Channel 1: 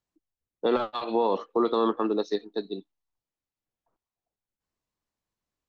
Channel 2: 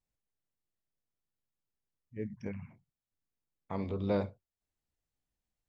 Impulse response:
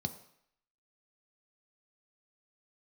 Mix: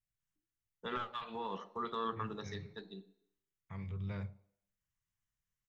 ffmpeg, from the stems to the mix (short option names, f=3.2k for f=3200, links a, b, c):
-filter_complex "[0:a]equalizer=f=130:t=o:w=0.84:g=-7.5,adelay=200,volume=-3.5dB,asplit=2[a][b];[b]volume=-6dB[c];[1:a]volume=-4.5dB,asplit=2[d][e];[e]volume=-11dB[f];[2:a]atrim=start_sample=2205[g];[c][f]amix=inputs=2:normalize=0[h];[h][g]afir=irnorm=-1:irlink=0[i];[a][d][i]amix=inputs=3:normalize=0,equalizer=f=250:t=o:w=1:g=-10,equalizer=f=500:t=o:w=1:g=-10,equalizer=f=1k:t=o:w=1:g=-7,equalizer=f=2k:t=o:w=1:g=6,equalizer=f=4k:t=o:w=1:g=-5"